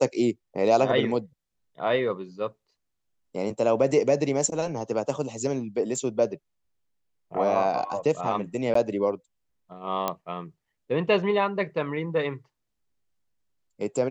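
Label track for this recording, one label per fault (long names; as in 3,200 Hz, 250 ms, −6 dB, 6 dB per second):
5.960000	5.960000	drop-out 3 ms
8.740000	8.750000	drop-out 14 ms
10.080000	10.080000	click −11 dBFS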